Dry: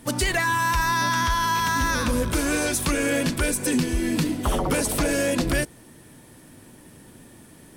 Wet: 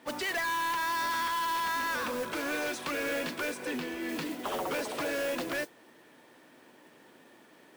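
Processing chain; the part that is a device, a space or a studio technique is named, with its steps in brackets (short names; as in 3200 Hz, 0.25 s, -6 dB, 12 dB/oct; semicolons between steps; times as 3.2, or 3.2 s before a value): carbon microphone (BPF 420–3500 Hz; soft clip -25.5 dBFS, distortion -11 dB; modulation noise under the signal 14 dB); 3.65–4.09 tone controls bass -1 dB, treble -5 dB; gain -2.5 dB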